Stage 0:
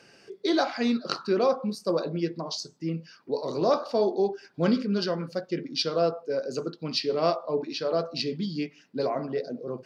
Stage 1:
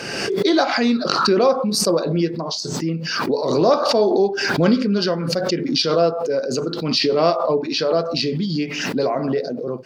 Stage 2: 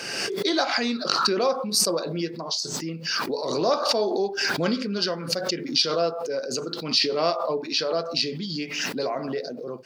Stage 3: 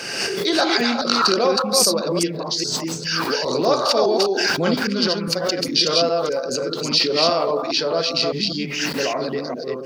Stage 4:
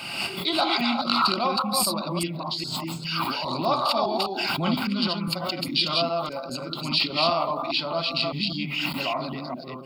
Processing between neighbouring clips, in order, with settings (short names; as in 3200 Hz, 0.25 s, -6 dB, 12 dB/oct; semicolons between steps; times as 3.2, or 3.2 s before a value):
backwards sustainer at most 34 dB/s; gain +7 dB
tilt +2 dB/oct; gain -5.5 dB
reverse delay 0.203 s, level -2.5 dB; gain +3.5 dB
fixed phaser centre 1700 Hz, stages 6